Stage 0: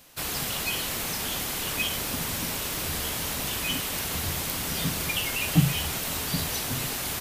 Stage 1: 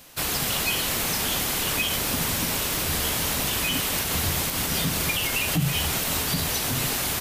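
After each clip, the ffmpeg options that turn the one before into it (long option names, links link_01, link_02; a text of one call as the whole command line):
ffmpeg -i in.wav -af "alimiter=limit=-19.5dB:level=0:latency=1:release=81,volume=5dB" out.wav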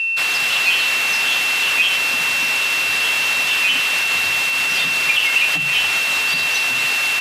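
ffmpeg -i in.wav -af "aeval=exprs='val(0)+0.0447*sin(2*PI*2700*n/s)':channel_layout=same,acontrast=56,bandpass=frequency=2300:width_type=q:width=0.88:csg=0,volume=4dB" out.wav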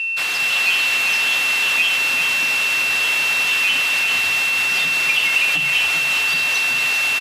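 ffmpeg -i in.wav -af "aecho=1:1:393:0.473,volume=-2.5dB" out.wav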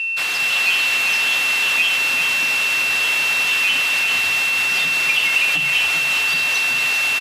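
ffmpeg -i in.wav -af anull out.wav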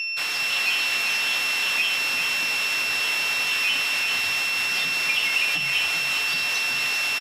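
ffmpeg -i in.wav -filter_complex "[0:a]aeval=exprs='val(0)+0.0398*sin(2*PI*5400*n/s)':channel_layout=same,asplit=2[link_01][link_02];[link_02]adelay=22,volume=-11dB[link_03];[link_01][link_03]amix=inputs=2:normalize=0,volume=-5dB" out.wav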